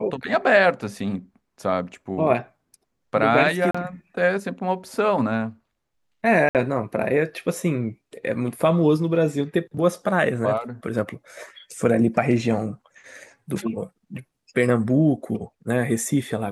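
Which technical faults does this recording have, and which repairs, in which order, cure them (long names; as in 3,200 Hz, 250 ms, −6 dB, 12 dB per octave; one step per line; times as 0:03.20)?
0:03.71–0:03.75: drop-out 35 ms
0:06.49–0:06.55: drop-out 58 ms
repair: repair the gap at 0:03.71, 35 ms
repair the gap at 0:06.49, 58 ms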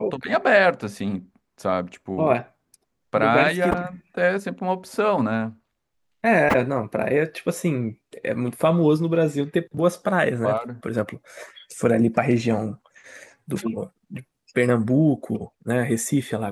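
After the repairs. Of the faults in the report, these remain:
none of them is left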